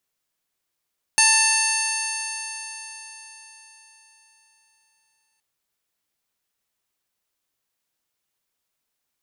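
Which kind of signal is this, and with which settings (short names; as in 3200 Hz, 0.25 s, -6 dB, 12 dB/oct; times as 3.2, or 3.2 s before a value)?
stretched partials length 4.22 s, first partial 885 Hz, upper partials 0.5/3/-13/2.5/-7.5/3.5/-9/-8/4.5/0 dB, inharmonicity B 0.0011, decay 4.38 s, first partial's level -23 dB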